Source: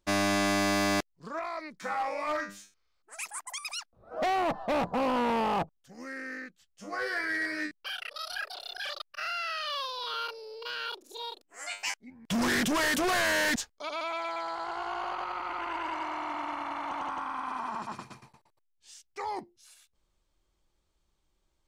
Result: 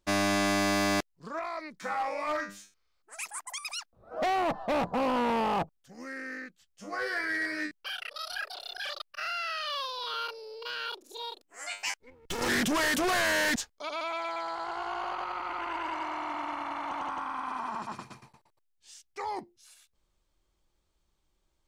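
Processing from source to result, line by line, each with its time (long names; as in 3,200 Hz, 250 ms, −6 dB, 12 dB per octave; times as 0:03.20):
0:11.98–0:12.49: lower of the sound and its delayed copy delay 2.3 ms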